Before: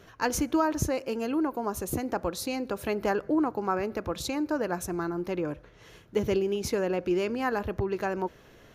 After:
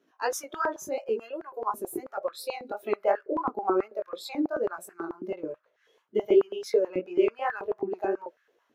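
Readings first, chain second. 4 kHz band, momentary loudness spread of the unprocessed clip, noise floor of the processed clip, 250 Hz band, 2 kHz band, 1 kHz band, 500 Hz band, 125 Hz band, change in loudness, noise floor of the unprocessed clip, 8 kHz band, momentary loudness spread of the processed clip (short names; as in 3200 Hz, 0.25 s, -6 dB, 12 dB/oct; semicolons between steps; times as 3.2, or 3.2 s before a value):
-4.5 dB, 6 LU, -72 dBFS, -4.5 dB, -2.5 dB, 0.0 dB, +2.0 dB, under -15 dB, 0.0 dB, -54 dBFS, -5.5 dB, 11 LU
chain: spectral noise reduction 16 dB; chorus 2.8 Hz, delay 17 ms, depth 5.3 ms; stepped high-pass 9.2 Hz 270–1600 Hz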